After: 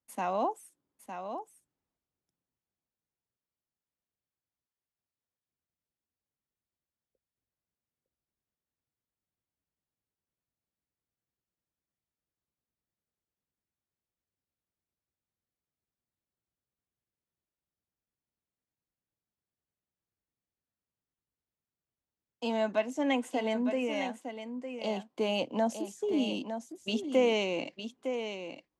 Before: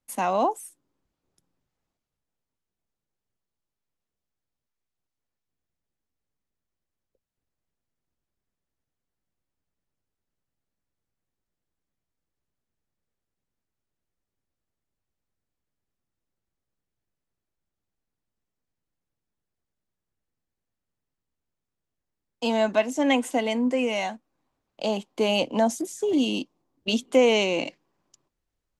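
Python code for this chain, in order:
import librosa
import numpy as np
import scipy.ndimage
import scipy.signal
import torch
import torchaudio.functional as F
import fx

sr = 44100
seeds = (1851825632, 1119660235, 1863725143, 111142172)

p1 = scipy.signal.sosfilt(scipy.signal.butter(2, 49.0, 'highpass', fs=sr, output='sos'), x)
p2 = fx.high_shelf(p1, sr, hz=4700.0, db=-6.5)
p3 = p2 + fx.echo_single(p2, sr, ms=908, db=-8.5, dry=0)
y = F.gain(torch.from_numpy(p3), -7.0).numpy()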